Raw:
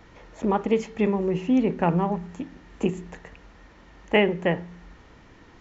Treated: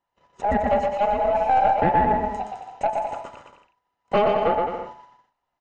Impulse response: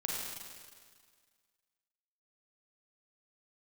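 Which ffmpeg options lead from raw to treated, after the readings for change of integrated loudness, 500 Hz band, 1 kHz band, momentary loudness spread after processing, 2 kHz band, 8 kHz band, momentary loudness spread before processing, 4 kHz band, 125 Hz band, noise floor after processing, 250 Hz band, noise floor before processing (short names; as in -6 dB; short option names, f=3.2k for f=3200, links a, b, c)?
+2.5 dB, +3.0 dB, +11.5 dB, 15 LU, -1.5 dB, n/a, 16 LU, -4.0 dB, -5.0 dB, -80 dBFS, -6.5 dB, -52 dBFS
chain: -filter_complex "[0:a]afftfilt=real='real(if(between(b,1,1008),(2*floor((b-1)/48)+1)*48-b,b),0)':imag='imag(if(between(b,1,1008),(2*floor((b-1)/48)+1)*48-b,b),0)*if(between(b,1,1008),-1,1)':win_size=2048:overlap=0.75,agate=range=-33dB:threshold=-44dB:ratio=16:detection=peak,acrossover=split=2100[a][b];[b]acompressor=threshold=-52dB:ratio=6[c];[a][c]amix=inputs=2:normalize=0,asoftclip=type=tanh:threshold=-13.5dB,asplit=2[d][e];[e]aecho=0:1:120|210|277.5|328.1|366.1:0.631|0.398|0.251|0.158|0.1[f];[d][f]amix=inputs=2:normalize=0,aeval=exprs='0.282*(cos(1*acos(clip(val(0)/0.282,-1,1)))-cos(1*PI/2))+0.0447*(cos(2*acos(clip(val(0)/0.282,-1,1)))-cos(2*PI/2))':c=same,volume=2dB"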